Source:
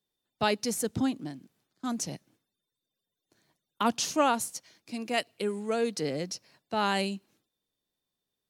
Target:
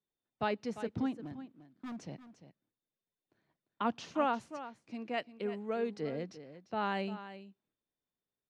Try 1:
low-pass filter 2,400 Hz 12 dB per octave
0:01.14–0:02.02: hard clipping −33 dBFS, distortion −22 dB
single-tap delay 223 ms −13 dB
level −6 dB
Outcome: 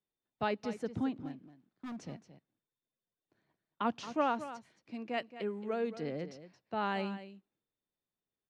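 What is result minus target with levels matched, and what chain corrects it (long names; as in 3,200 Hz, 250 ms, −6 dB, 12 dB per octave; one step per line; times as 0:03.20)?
echo 124 ms early
low-pass filter 2,400 Hz 12 dB per octave
0:01.14–0:02.02: hard clipping −33 dBFS, distortion −22 dB
single-tap delay 347 ms −13 dB
level −6 dB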